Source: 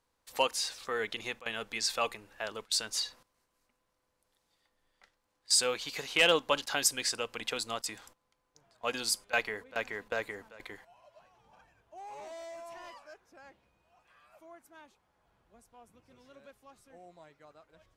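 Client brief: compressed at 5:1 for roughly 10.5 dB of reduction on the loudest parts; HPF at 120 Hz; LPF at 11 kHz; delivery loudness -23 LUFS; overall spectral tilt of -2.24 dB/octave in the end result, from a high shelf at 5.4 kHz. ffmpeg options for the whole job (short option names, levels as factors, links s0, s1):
-af "highpass=120,lowpass=11000,highshelf=f=5400:g=5,acompressor=threshold=0.0282:ratio=5,volume=4.73"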